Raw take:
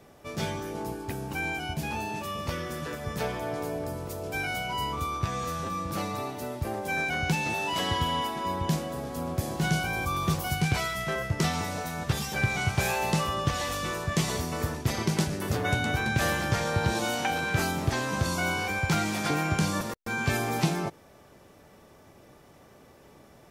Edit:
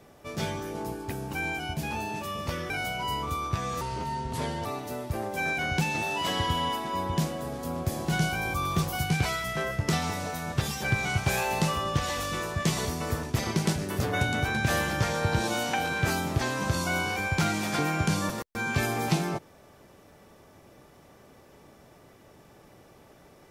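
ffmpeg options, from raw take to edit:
-filter_complex "[0:a]asplit=4[a][b][c][d];[a]atrim=end=2.702[e];[b]atrim=start=4.398:end=5.514[f];[c]atrim=start=5.51:end=6.17,asetpts=PTS-STARTPTS,asetrate=34398,aresample=44100,atrim=end_sample=37315,asetpts=PTS-STARTPTS[g];[d]atrim=start=6.166[h];[e][f]acrossfade=d=0.004:c1=hsin:c2=hsin[i];[i][g]acrossfade=d=0.004:c1=hsin:c2=hsin[j];[j][h]acrossfade=d=0.004:c1=hsin:c2=hsin"

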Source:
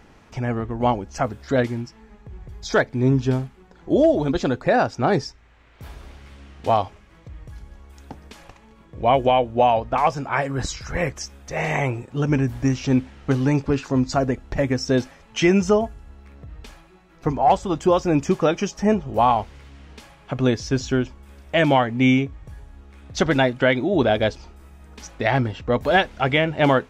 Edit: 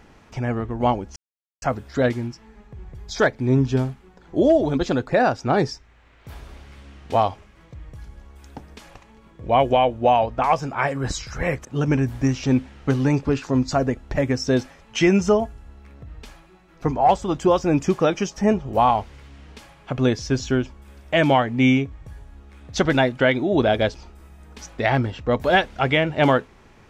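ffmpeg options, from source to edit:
-filter_complex "[0:a]asplit=3[a][b][c];[a]atrim=end=1.16,asetpts=PTS-STARTPTS,afade=t=out:st=1.156:d=0.004:c=hsin,apad=pad_dur=0.46[d];[b]atrim=start=1.16:end=11.192,asetpts=PTS-STARTPTS,afade=t=in:d=0.004:c=hsin[e];[c]atrim=start=12.058[f];[d][e]concat=n=2:v=0:a=1[g];[g][f]acrossfade=d=0.004:c1=hsin:c2=hsin"

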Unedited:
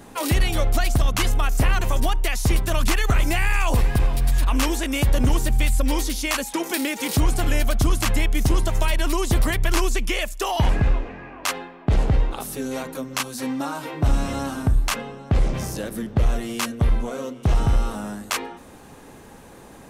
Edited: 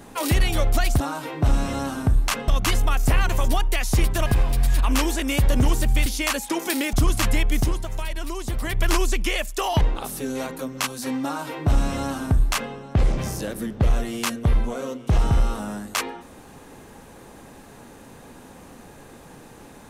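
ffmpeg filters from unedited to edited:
-filter_complex "[0:a]asplit=9[a][b][c][d][e][f][g][h][i];[a]atrim=end=1.002[j];[b]atrim=start=13.598:end=15.082[k];[c]atrim=start=0.998:end=2.782[l];[d]atrim=start=3.898:end=5.702[m];[e]atrim=start=6.098:end=6.972[n];[f]atrim=start=7.758:end=8.61,asetpts=PTS-STARTPTS,afade=t=out:st=0.642:d=0.21:silence=0.398107[o];[g]atrim=start=8.61:end=9.44,asetpts=PTS-STARTPTS,volume=-8dB[p];[h]atrim=start=9.44:end=10.642,asetpts=PTS-STARTPTS,afade=t=in:d=0.21:silence=0.398107[q];[i]atrim=start=12.168[r];[j][k]acrossfade=d=0.004:c1=hsin:c2=hsin[s];[s][l]acrossfade=d=0.004:c1=hsin:c2=hsin[t];[t][m]acrossfade=d=0.004:c1=hsin:c2=hsin[u];[u][n]acrossfade=d=0.004:c1=hsin:c2=hsin[v];[o][p][q]concat=n=3:v=0:a=1[w];[v][w]acrossfade=d=0.004:c1=hsin:c2=hsin[x];[x][r]acrossfade=d=0.004:c1=hsin:c2=hsin"

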